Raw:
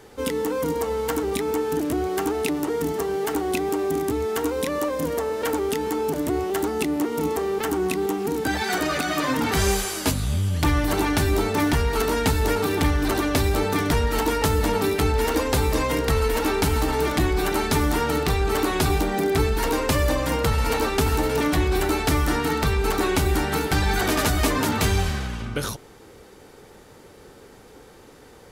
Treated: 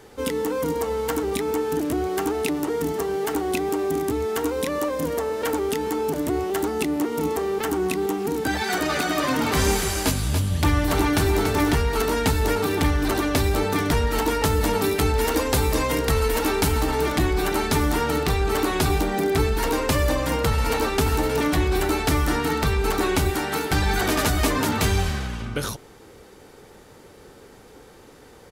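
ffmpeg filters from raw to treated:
-filter_complex "[0:a]asplit=3[a][b][c];[a]afade=t=out:st=8.88:d=0.02[d];[b]aecho=1:1:285:0.473,afade=t=in:st=8.88:d=0.02,afade=t=out:st=11.78:d=0.02[e];[c]afade=t=in:st=11.78:d=0.02[f];[d][e][f]amix=inputs=3:normalize=0,asettb=1/sr,asplit=3[g][h][i];[g]atrim=end=14.614[j];[h]atrim=start=14.61:end=16.72,asetpts=PTS-STARTPTS,afade=t=in:d=0.004:c=qsin,afade=t=out:st=2.106:d=0.004:c=qsin,highshelf=f=5.9k:g=4[k];[i]atrim=start=16.716[l];[j][k]acrossfade=d=0.004:c1=hsin:c2=qsin[m];[m][l]acrossfade=d=0.004:c1=qsin:c2=hsin,asettb=1/sr,asplit=3[n][o][p];[n]atrim=end=23.304[q];[o]atrim=start=23.3:end=23.7,asetpts=PTS-STARTPTS,afade=t=in:d=0.004:c=qsin,afade=t=out:st=0.396:d=0.004:c=qsin,highpass=f=260:p=1[r];[p]atrim=start=23.696[s];[q][r]acrossfade=d=0.004:c1=hsin:c2=qsin[t];[t][s]acrossfade=d=0.004:c1=qsin:c2=hsin"

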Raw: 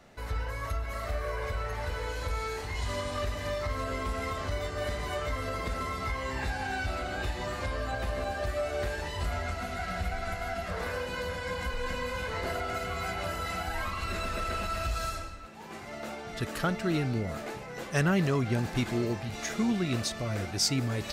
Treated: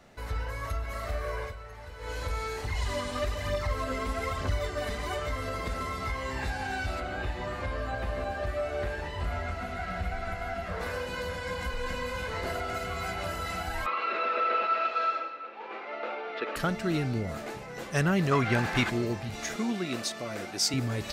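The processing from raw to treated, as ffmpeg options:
-filter_complex "[0:a]asettb=1/sr,asplit=3[a][b][c];[a]atrim=end=2.644[d];[b]atrim=start=2.64:end=5.19,asetpts=PTS-STARTPTS,afade=t=in:d=0.004:c=qsin,afade=t=out:st=2.546:d=0.004:c=qsin,aphaser=in_gain=1:out_gain=1:delay=4.8:decay=0.47:speed=1.1:type=triangular[e];[c]atrim=start=5.186[f];[d][e]acrossfade=d=0.004:c1=hsin:c2=qsin[g];[g][f]acrossfade=d=0.004:c1=qsin:c2=hsin,asettb=1/sr,asplit=3[h][i][j];[h]atrim=end=7.004[k];[i]atrim=start=7:end=10.81,asetpts=PTS-STARTPTS,afade=t=in:d=0.004:c=qsin,afade=t=out:st=3.806:d=0.004:c=qsin,acrossover=split=3200[l][m];[m]acompressor=threshold=-56dB:ratio=4:attack=1:release=60[n];[l][n]amix=inputs=2:normalize=0[o];[j]atrim=start=10.806[p];[k][o]acrossfade=d=0.004:c1=hsin:c2=qsin[q];[q][p]acrossfade=d=0.004:c1=qsin:c2=hsin,asettb=1/sr,asplit=3[r][s][t];[r]atrim=end=13.864[u];[s]atrim=start=13.86:end=16.56,asetpts=PTS-STARTPTS,afade=t=in:d=0.004:c=qsin,afade=t=out:st=2.696:d=0.004:c=qsin,highpass=f=300:w=0.5412,highpass=f=300:w=1.3066,equalizer=f=490:t=q:w=4:g=10,equalizer=f=870:t=q:w=4:g=5,equalizer=f=1.3k:t=q:w=4:g=8,equalizer=f=2.4k:t=q:w=4:g=7,lowpass=f=3.8k:w=0.5412,lowpass=f=3.8k:w=1.3066[v];[t]atrim=start=16.556[w];[u][v]acrossfade=d=0.004:c1=hsin:c2=qsin[x];[x][w]acrossfade=d=0.004:c1=qsin:c2=hsin,asettb=1/sr,asplit=3[y][z][aa];[y]atrim=end=18.314[ab];[z]atrim=start=18.31:end=18.9,asetpts=PTS-STARTPTS,afade=t=in:d=0.004:c=qsin,afade=t=out:st=0.586:d=0.004:c=qsin,equalizer=f=1.6k:t=o:w=2.6:g=11[ac];[aa]atrim=start=18.896[ad];[ab][ac]acrossfade=d=0.004:c1=hsin:c2=qsin[ae];[ae][ad]acrossfade=d=0.004:c1=qsin:c2=hsin,asettb=1/sr,asplit=3[af][ag][ah];[af]atrim=end=19.564[ai];[ag]atrim=start=19.56:end=20.74,asetpts=PTS-STARTPTS,afade=t=in:d=0.004:c=qsin,afade=t=out:st=1.176:d=0.004:c=qsin,highpass=230[aj];[ah]atrim=start=20.736[ak];[ai][aj]acrossfade=d=0.004:c1=hsin:c2=qsin[al];[al][ak]acrossfade=d=0.004:c1=qsin:c2=hsin,asplit=3[am][an][ao];[am]atrim=end=1.55,asetpts=PTS-STARTPTS,afade=t=out:st=1.4:d=0.15:silence=0.298538[ap];[an]atrim=start=1.55:end=1.98,asetpts=PTS-STARTPTS,volume=-10.5dB[aq];[ao]atrim=start=1.98,asetpts=PTS-STARTPTS,afade=t=in:d=0.15:silence=0.298538[ar];[ap][aq][ar]concat=n=3:v=0:a=1"

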